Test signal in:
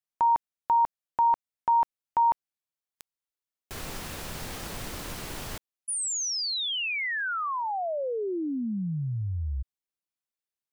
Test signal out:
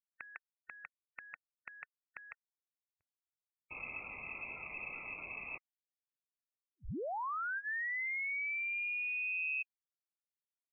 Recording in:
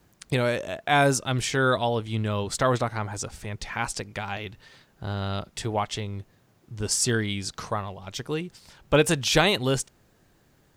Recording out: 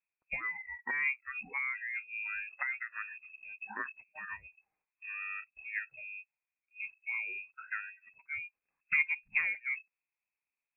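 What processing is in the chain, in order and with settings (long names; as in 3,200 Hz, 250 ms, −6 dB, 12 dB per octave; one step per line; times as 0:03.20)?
noise reduction from a noise print of the clip's start 26 dB
treble cut that deepens with the level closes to 560 Hz, closed at −22.5 dBFS
voice inversion scrambler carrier 2,600 Hz
level −7.5 dB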